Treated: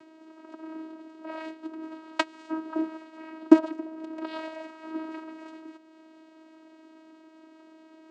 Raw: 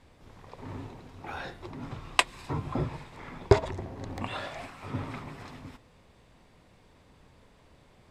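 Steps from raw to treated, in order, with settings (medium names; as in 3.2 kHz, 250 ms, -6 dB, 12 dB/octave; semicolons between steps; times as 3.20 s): in parallel at +1 dB: upward compressor, threshold -39 dBFS; on the sum: vocoder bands 8, saw 318 Hz; trim -2 dB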